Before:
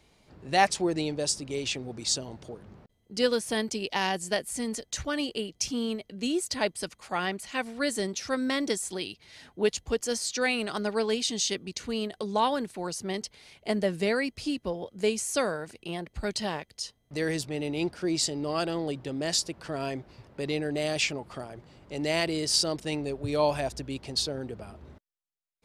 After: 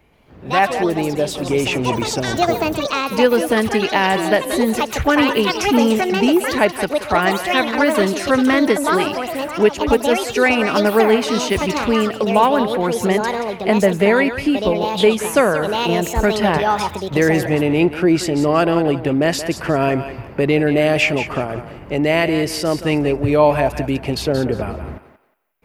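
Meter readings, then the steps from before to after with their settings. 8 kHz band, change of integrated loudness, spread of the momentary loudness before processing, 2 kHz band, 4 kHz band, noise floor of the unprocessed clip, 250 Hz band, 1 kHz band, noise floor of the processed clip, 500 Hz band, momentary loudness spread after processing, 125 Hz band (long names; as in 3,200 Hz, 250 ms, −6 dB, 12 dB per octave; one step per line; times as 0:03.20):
+3.0 dB, +12.5 dB, 11 LU, +14.0 dB, +7.0 dB, −70 dBFS, +14.5 dB, +14.5 dB, −36 dBFS, +14.5 dB, 6 LU, +15.0 dB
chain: in parallel at +1.5 dB: downward compressor, threshold −33 dBFS, peak gain reduction 15.5 dB
on the sum: flat-topped bell 5,700 Hz −14 dB
feedback echo with a high-pass in the loop 179 ms, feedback 27%, high-pass 510 Hz, level −9.5 dB
delay with pitch and tempo change per echo 131 ms, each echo +6 semitones, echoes 2, each echo −6 dB
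automatic gain control gain up to 12.5 dB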